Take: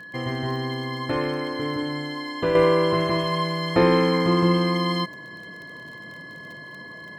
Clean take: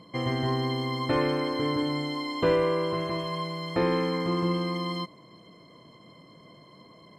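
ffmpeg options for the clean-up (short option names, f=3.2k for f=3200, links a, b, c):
-af "adeclick=t=4,bandreject=f=1.7k:w=30,asetnsamples=n=441:p=0,asendcmd='2.55 volume volume -7.5dB',volume=0dB"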